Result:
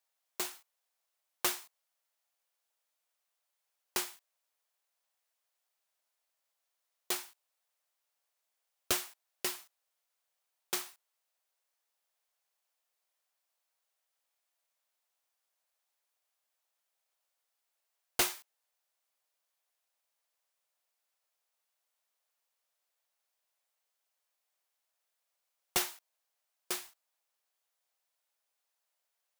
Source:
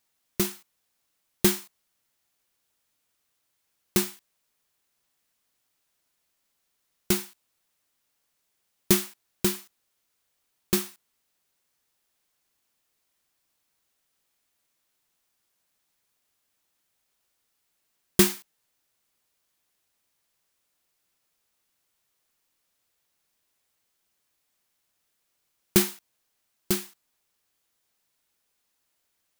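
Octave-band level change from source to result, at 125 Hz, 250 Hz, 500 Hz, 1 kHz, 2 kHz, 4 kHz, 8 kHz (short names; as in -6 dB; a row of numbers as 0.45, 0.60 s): -24.5, -21.0, -14.5, -2.5, -5.5, -6.0, -7.5 dB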